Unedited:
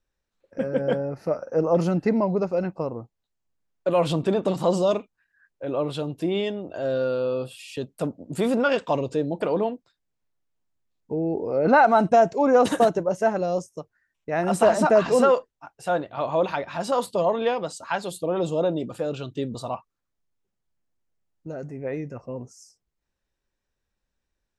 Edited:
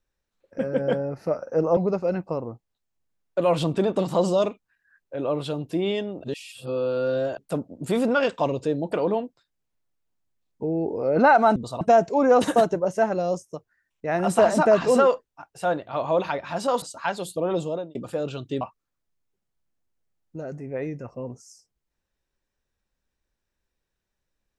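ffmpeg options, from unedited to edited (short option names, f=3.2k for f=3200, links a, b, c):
-filter_complex "[0:a]asplit=9[a][b][c][d][e][f][g][h][i];[a]atrim=end=1.772[j];[b]atrim=start=2.258:end=6.732[k];[c]atrim=start=6.728:end=7.872,asetpts=PTS-STARTPTS,areverse[l];[d]atrim=start=7.868:end=12.052[m];[e]atrim=start=19.468:end=19.722[n];[f]atrim=start=12.048:end=17.062[o];[g]atrim=start=17.678:end=18.81,asetpts=PTS-STARTPTS,afade=t=out:st=0.742:d=0.39[p];[h]atrim=start=18.81:end=19.472,asetpts=PTS-STARTPTS,afade=t=in:d=0.004:c=hsin[q];[i]atrim=start=19.718[r];[j][k]acrossfade=d=0.004:c1=hsin:c2=hsin[s];[s][l]acrossfade=d=0.004:c1=hsin:c2=hsin[t];[t][m]acrossfade=d=0.004:c1=hsin:c2=hsin[u];[u][n]acrossfade=d=0.004:c1=hsin:c2=hsin[v];[v][o]acrossfade=d=0.004:c1=hsin:c2=hsin[w];[p][q]concat=n=2:v=0:a=1[x];[w][x]acrossfade=d=0.004:c1=hsin:c2=hsin[y];[y][r]acrossfade=d=0.004:c1=hsin:c2=hsin"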